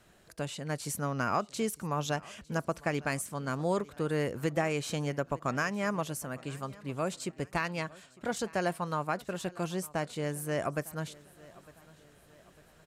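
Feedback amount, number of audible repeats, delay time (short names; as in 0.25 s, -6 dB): 48%, 3, 0.904 s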